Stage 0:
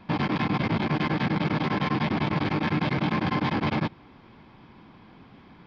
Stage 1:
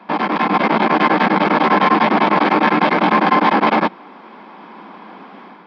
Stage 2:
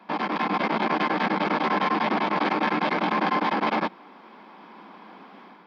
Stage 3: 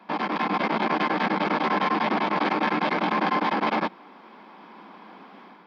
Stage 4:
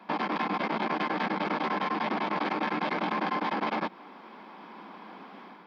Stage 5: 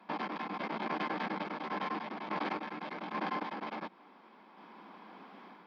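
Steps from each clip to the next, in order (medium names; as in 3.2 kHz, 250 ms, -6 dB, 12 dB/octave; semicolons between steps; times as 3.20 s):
elliptic high-pass 190 Hz, stop band 50 dB; peaking EQ 940 Hz +11.5 dB 2.7 oct; level rider gain up to 6.5 dB; trim +1.5 dB
treble shelf 5.2 kHz +9 dB; peak limiter -4.5 dBFS, peak gain reduction 3.5 dB; trim -9 dB
no audible change
compression, threshold -26 dBFS, peak gain reduction 7 dB
random-step tremolo; trim -5 dB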